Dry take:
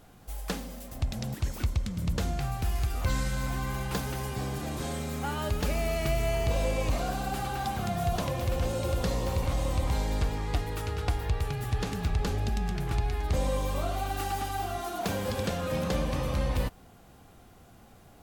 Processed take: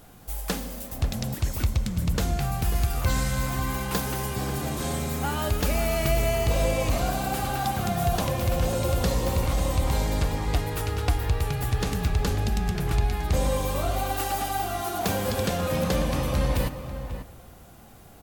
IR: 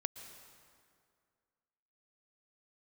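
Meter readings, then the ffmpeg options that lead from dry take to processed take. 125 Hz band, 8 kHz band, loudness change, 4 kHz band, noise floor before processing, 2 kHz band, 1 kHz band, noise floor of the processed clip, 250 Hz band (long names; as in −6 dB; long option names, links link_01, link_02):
+4.0 dB, +7.0 dB, +4.5 dB, +5.0 dB, −54 dBFS, +4.5 dB, +4.5 dB, −48 dBFS, +4.5 dB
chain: -filter_complex "[0:a]highshelf=frequency=9700:gain=8.5,asplit=2[link_01][link_02];[link_02]adelay=542.3,volume=-10dB,highshelf=frequency=4000:gain=-12.2[link_03];[link_01][link_03]amix=inputs=2:normalize=0,asplit=2[link_04][link_05];[1:a]atrim=start_sample=2205[link_06];[link_05][link_06]afir=irnorm=-1:irlink=0,volume=-3.5dB[link_07];[link_04][link_07]amix=inputs=2:normalize=0"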